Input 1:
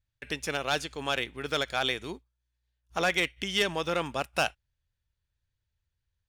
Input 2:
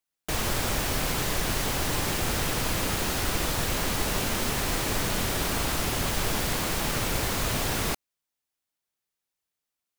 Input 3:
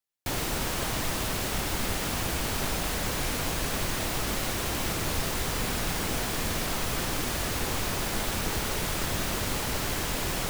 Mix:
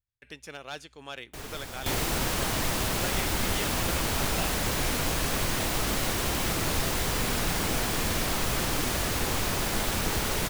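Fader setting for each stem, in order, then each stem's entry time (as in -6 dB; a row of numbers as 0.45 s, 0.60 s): -10.5 dB, -13.0 dB, +1.5 dB; 0.00 s, 1.05 s, 1.60 s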